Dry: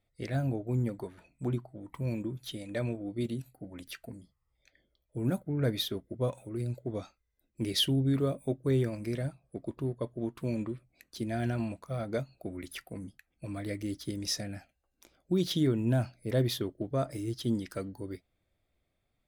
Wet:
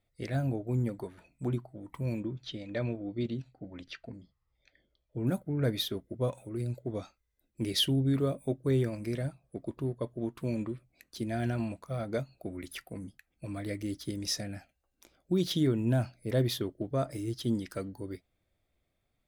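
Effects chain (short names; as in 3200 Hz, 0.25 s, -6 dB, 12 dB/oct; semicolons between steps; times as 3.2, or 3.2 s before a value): 2.2–5.27 LPF 5400 Hz 24 dB/oct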